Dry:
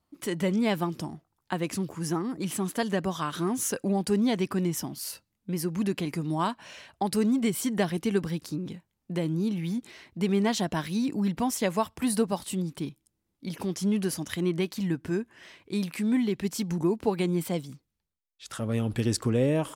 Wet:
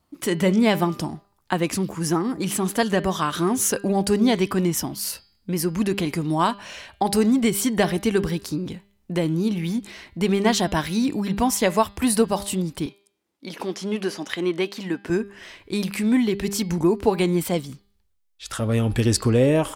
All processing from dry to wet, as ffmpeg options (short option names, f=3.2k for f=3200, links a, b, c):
-filter_complex "[0:a]asettb=1/sr,asplit=3[a][b][c];[a]atrim=end=12.864[d];[b]atrim=start=12.86:end=15.1,asetpts=PTS-STARTPTS,afade=t=in:d=0.004:c=qsin,afade=t=out:st=2.236:d=0.004:c=qsin,acrossover=split=5600[e][f];[f]acompressor=threshold=-47dB:ratio=4:attack=1:release=60[g];[e][g]amix=inputs=2:normalize=0,highpass=290,highshelf=f=7.7k:g=-8[h];[c]atrim=start=15.096[i];[d][h]acrossfade=d=0.004:c1=hsin:c2=qsin[j];[j][i]acrossfade=d=0.004:c1=qsin:c2=hsin,bandreject=f=200.2:t=h:w=4,bandreject=f=400.4:t=h:w=4,bandreject=f=600.6:t=h:w=4,bandreject=f=800.8:t=h:w=4,bandreject=f=1.001k:t=h:w=4,bandreject=f=1.2012k:t=h:w=4,bandreject=f=1.4014k:t=h:w=4,bandreject=f=1.6016k:t=h:w=4,bandreject=f=1.8018k:t=h:w=4,bandreject=f=2.002k:t=h:w=4,bandreject=f=2.2022k:t=h:w=4,bandreject=f=2.4024k:t=h:w=4,bandreject=f=2.6026k:t=h:w=4,bandreject=f=2.8028k:t=h:w=4,bandreject=f=3.003k:t=h:w=4,bandreject=f=3.2032k:t=h:w=4,bandreject=f=3.4034k:t=h:w=4,bandreject=f=3.6036k:t=h:w=4,bandreject=f=3.8038k:t=h:w=4,bandreject=f=4.004k:t=h:w=4,bandreject=f=4.2042k:t=h:w=4,bandreject=f=4.4044k:t=h:w=4,bandreject=f=4.6046k:t=h:w=4,bandreject=f=4.8048k:t=h:w=4,bandreject=f=5.005k:t=h:w=4,asubboost=boost=5:cutoff=61,volume=8dB"